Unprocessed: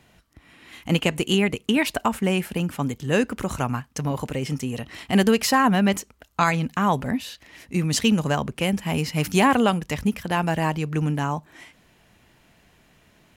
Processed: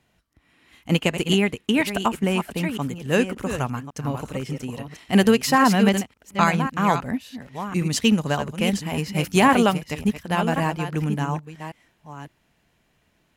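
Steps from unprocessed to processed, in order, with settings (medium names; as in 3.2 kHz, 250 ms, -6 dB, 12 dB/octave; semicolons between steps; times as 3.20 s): chunks repeated in reverse 558 ms, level -7 dB; upward expansion 1.5:1, over -38 dBFS; trim +2.5 dB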